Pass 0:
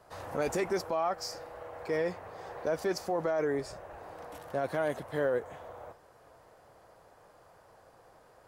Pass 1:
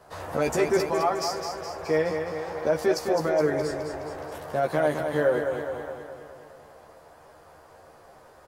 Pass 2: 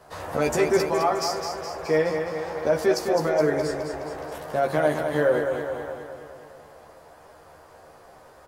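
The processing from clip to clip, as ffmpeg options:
-filter_complex "[0:a]asplit=2[a][b];[b]adelay=13,volume=-3.5dB[c];[a][c]amix=inputs=2:normalize=0,aecho=1:1:209|418|627|836|1045|1254|1463|1672:0.473|0.279|0.165|0.0972|0.0573|0.0338|0.02|0.0118,volume=4.5dB"
-af "bandreject=f=45.57:t=h:w=4,bandreject=f=91.14:t=h:w=4,bandreject=f=136.71:t=h:w=4,bandreject=f=182.28:t=h:w=4,bandreject=f=227.85:t=h:w=4,bandreject=f=273.42:t=h:w=4,bandreject=f=318.99:t=h:w=4,bandreject=f=364.56:t=h:w=4,bandreject=f=410.13:t=h:w=4,bandreject=f=455.7:t=h:w=4,bandreject=f=501.27:t=h:w=4,bandreject=f=546.84:t=h:w=4,bandreject=f=592.41:t=h:w=4,bandreject=f=637.98:t=h:w=4,bandreject=f=683.55:t=h:w=4,bandreject=f=729.12:t=h:w=4,bandreject=f=774.69:t=h:w=4,bandreject=f=820.26:t=h:w=4,bandreject=f=865.83:t=h:w=4,bandreject=f=911.4:t=h:w=4,bandreject=f=956.97:t=h:w=4,bandreject=f=1.00254k:t=h:w=4,bandreject=f=1.04811k:t=h:w=4,bandreject=f=1.09368k:t=h:w=4,bandreject=f=1.13925k:t=h:w=4,bandreject=f=1.18482k:t=h:w=4,bandreject=f=1.23039k:t=h:w=4,bandreject=f=1.27596k:t=h:w=4,bandreject=f=1.32153k:t=h:w=4,bandreject=f=1.3671k:t=h:w=4,bandreject=f=1.41267k:t=h:w=4,bandreject=f=1.45824k:t=h:w=4,bandreject=f=1.50381k:t=h:w=4,bandreject=f=1.54938k:t=h:w=4,bandreject=f=1.59495k:t=h:w=4,bandreject=f=1.64052k:t=h:w=4,bandreject=f=1.68609k:t=h:w=4,volume=2.5dB"

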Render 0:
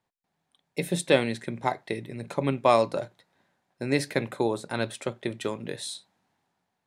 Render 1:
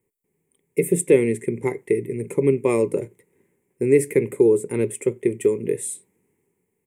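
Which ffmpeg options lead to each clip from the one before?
-filter_complex "[0:a]firequalizer=gain_entry='entry(270,0);entry(420,12);entry(650,-21);entry(940,-11);entry(1500,-20);entry(2100,0);entry(4000,-28);entry(7800,4);entry(13000,6)':delay=0.05:min_phase=1,asplit=2[a][b];[b]alimiter=limit=-18dB:level=0:latency=1:release=130,volume=-1.5dB[c];[a][c]amix=inputs=2:normalize=0,volume=1dB"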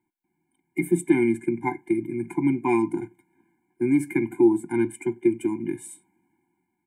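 -filter_complex "[0:a]acrossover=split=280 2300:gain=0.178 1 0.178[a][b][c];[a][b][c]amix=inputs=3:normalize=0,afftfilt=real='re*eq(mod(floor(b*sr/1024/350),2),0)':imag='im*eq(mod(floor(b*sr/1024/350),2),0)':win_size=1024:overlap=0.75,volume=7.5dB"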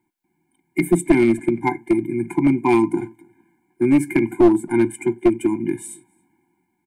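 -filter_complex "[0:a]aeval=exprs='clip(val(0),-1,0.141)':c=same,asplit=2[a][b];[b]adelay=274.1,volume=-27dB,highshelf=f=4k:g=-6.17[c];[a][c]amix=inputs=2:normalize=0,volume=6dB"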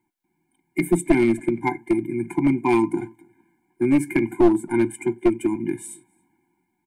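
-af "flanger=delay=0.9:depth=1.4:regen=80:speed=1.6:shape=triangular,volume=2.5dB"

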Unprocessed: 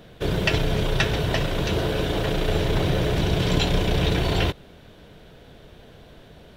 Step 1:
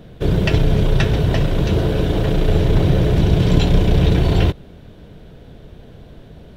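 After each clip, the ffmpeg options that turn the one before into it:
-af "lowshelf=f=470:g=11,volume=-1.5dB"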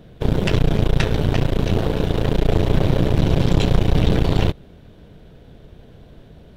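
-af "aeval=exprs='0.891*(cos(1*acos(clip(val(0)/0.891,-1,1)))-cos(1*PI/2))+0.178*(cos(6*acos(clip(val(0)/0.891,-1,1)))-cos(6*PI/2))':c=same,volume=-4dB"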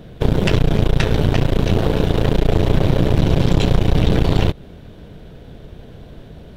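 -af "acompressor=threshold=-18dB:ratio=2,volume=6dB"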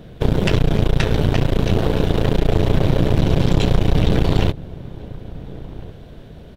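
-filter_complex "[0:a]asplit=2[a][b];[b]adelay=1399,volume=-18dB,highshelf=f=4k:g=-31.5[c];[a][c]amix=inputs=2:normalize=0,volume=-1dB"

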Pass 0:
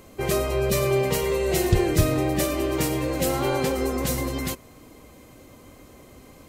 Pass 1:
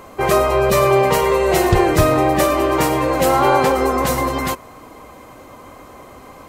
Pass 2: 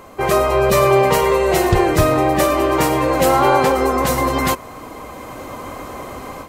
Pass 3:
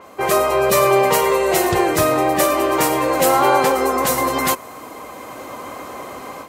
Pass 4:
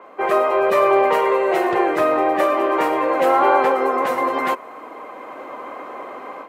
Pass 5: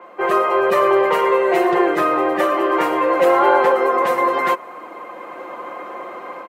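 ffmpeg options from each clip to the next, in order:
-af "equalizer=f=1k:t=o:w=1.8:g=13.5,volume=3dB"
-af "dynaudnorm=f=320:g=3:m=10dB,volume=-1dB"
-af "highpass=f=280:p=1,adynamicequalizer=threshold=0.0112:dfrequency=6300:dqfactor=0.7:tfrequency=6300:tqfactor=0.7:attack=5:release=100:ratio=0.375:range=2.5:mode=boostabove:tftype=highshelf"
-filter_complex "[0:a]aeval=exprs='0.891*(cos(1*acos(clip(val(0)/0.891,-1,1)))-cos(1*PI/2))+0.0112*(cos(6*acos(clip(val(0)/0.891,-1,1)))-cos(6*PI/2))':c=same,acrossover=split=250 2700:gain=0.0794 1 0.0794[a][b][c];[a][b][c]amix=inputs=3:normalize=0"
-af "aecho=1:1:5.7:0.6"

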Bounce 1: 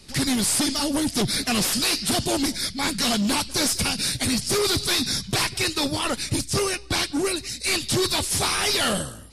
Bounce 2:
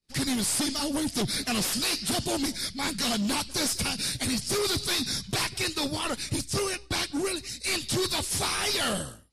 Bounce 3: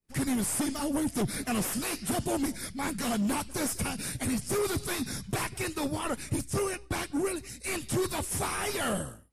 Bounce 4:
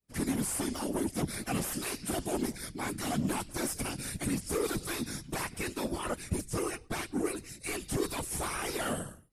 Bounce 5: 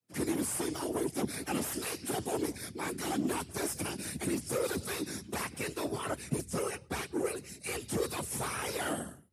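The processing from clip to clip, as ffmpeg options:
-af "agate=range=-33dB:threshold=-33dB:ratio=3:detection=peak,volume=-5dB"
-af "equalizer=f=4.3k:w=1.1:g=-14.5"
-af "afftfilt=real='hypot(re,im)*cos(2*PI*random(0))':imag='hypot(re,im)*sin(2*PI*random(1))':win_size=512:overlap=0.75,volume=3dB"
-af "afreqshift=62,volume=-1dB"

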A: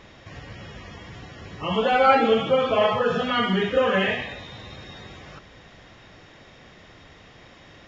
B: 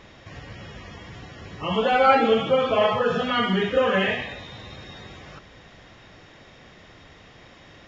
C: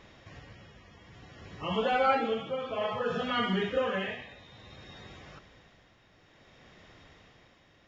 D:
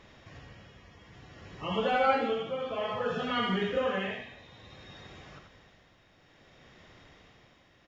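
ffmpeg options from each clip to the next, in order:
-af anull
-af "tremolo=f=0.58:d=0.58,volume=-6.5dB"
-af "aecho=1:1:83:0.473,volume=-1dB"

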